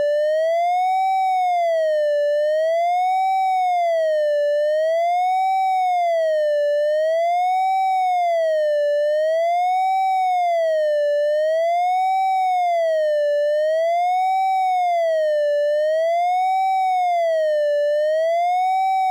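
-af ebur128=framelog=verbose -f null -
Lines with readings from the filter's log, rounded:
Integrated loudness:
  I:         -19.1 LUFS
  Threshold: -29.1 LUFS
Loudness range:
  LRA:         0.0 LU
  Threshold: -39.1 LUFS
  LRA low:   -19.1 LUFS
  LRA high:  -19.1 LUFS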